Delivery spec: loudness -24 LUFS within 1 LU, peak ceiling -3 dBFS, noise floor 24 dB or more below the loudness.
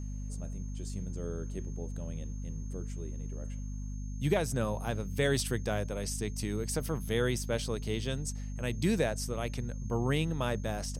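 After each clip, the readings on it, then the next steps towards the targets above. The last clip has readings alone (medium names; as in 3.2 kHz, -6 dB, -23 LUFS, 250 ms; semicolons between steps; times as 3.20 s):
hum 50 Hz; highest harmonic 250 Hz; hum level -35 dBFS; steady tone 6.4 kHz; tone level -56 dBFS; loudness -34.5 LUFS; peak level -16.0 dBFS; loudness target -24.0 LUFS
-> hum notches 50/100/150/200/250 Hz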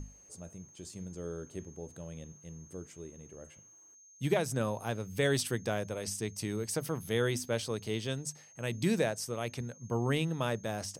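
hum not found; steady tone 6.4 kHz; tone level -56 dBFS
-> band-stop 6.4 kHz, Q 30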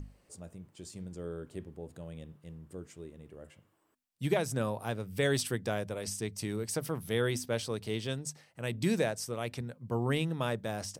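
steady tone not found; loudness -34.5 LUFS; peak level -16.0 dBFS; loudness target -24.0 LUFS
-> trim +10.5 dB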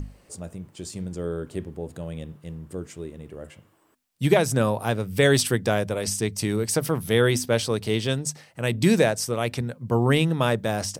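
loudness -24.0 LUFS; peak level -5.5 dBFS; noise floor -61 dBFS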